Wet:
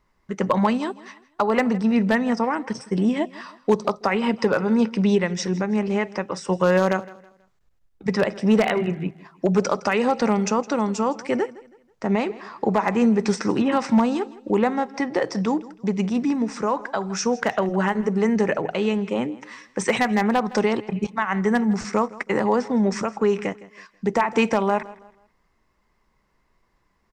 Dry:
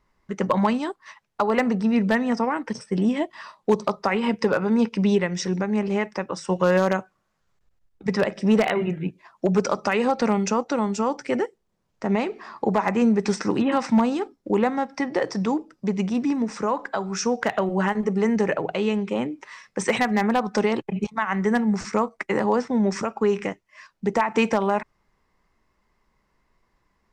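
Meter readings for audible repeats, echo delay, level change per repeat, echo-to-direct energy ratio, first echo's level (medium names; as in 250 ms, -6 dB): 2, 162 ms, -9.5 dB, -19.0 dB, -19.5 dB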